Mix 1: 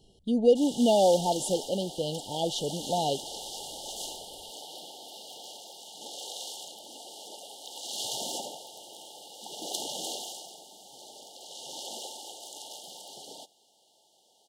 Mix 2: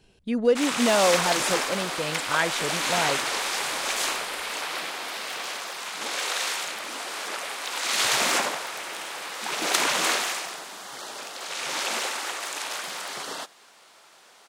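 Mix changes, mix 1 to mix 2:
background +9.5 dB
master: remove linear-phase brick-wall band-stop 920–2,800 Hz

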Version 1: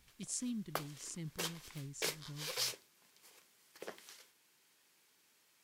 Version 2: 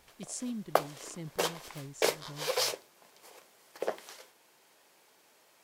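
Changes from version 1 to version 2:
background +5.0 dB
master: add parametric band 640 Hz +13 dB 1.6 octaves

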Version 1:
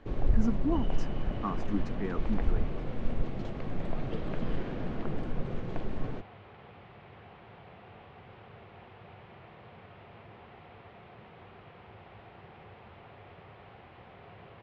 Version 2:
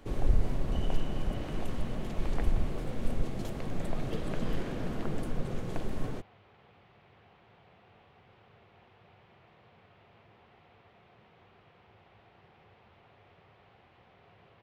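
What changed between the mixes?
speech: muted
second sound −9.5 dB
master: remove high-frequency loss of the air 190 metres

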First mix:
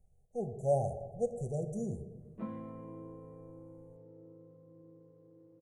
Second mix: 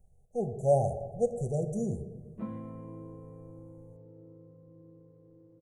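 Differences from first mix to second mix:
speech +5.0 dB
background: remove high-pass filter 210 Hz 6 dB per octave

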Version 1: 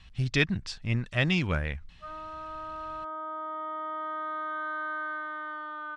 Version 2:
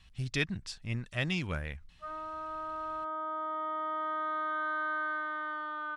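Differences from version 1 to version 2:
speech −7.0 dB
master: remove high-frequency loss of the air 68 metres

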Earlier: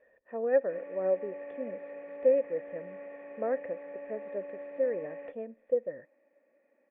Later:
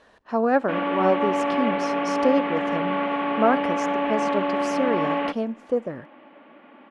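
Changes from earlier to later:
background +10.0 dB
master: remove formant resonators in series e

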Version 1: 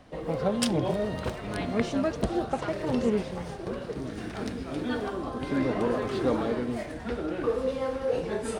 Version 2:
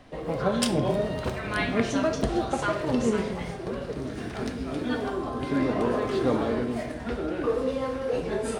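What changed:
speech +5.5 dB
reverb: on, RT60 0.65 s

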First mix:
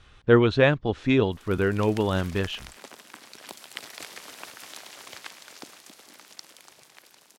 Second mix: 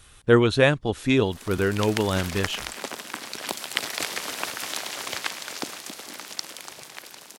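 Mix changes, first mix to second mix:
speech: remove high-frequency loss of the air 160 metres
background +11.5 dB

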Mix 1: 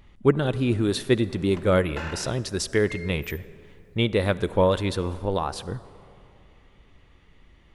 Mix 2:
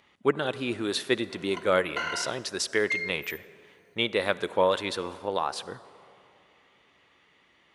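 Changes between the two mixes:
background: add EQ curve with evenly spaced ripples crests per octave 1.9, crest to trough 18 dB
master: add meter weighting curve A

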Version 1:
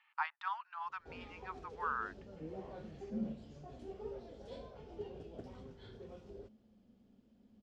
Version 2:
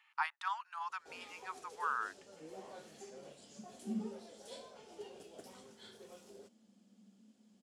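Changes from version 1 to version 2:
first sound: add meter weighting curve A
second sound: entry +0.75 s
master: remove high-frequency loss of the air 220 metres

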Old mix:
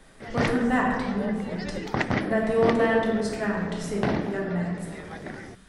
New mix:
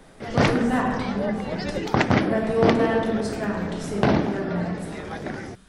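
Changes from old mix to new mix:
background +6.5 dB
master: add parametric band 1,900 Hz −5.5 dB 0.27 octaves

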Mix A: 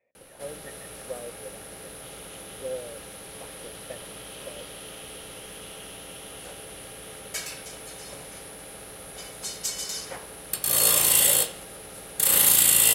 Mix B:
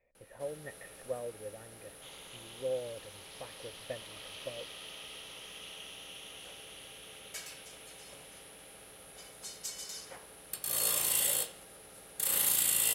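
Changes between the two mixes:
speech: remove high-pass filter 190 Hz 12 dB per octave
second sound −10.5 dB
master: add low-shelf EQ 320 Hz −3 dB

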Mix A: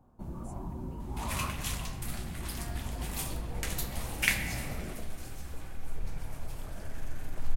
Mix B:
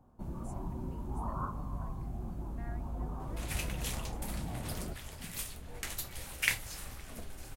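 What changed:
second sound: entry +2.20 s
reverb: off

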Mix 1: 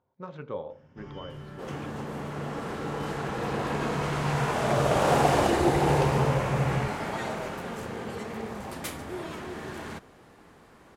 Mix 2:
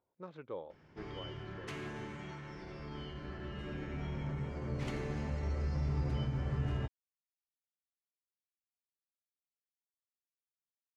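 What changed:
speech −9.0 dB
second sound: muted
reverb: off

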